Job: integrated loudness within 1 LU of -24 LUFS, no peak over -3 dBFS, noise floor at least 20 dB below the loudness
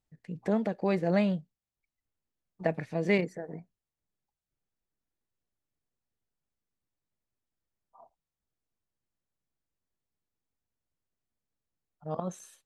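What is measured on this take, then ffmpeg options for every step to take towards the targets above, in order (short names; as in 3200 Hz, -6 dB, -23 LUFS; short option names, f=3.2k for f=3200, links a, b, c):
loudness -31.0 LUFS; peak -13.0 dBFS; loudness target -24.0 LUFS
-> -af "volume=7dB"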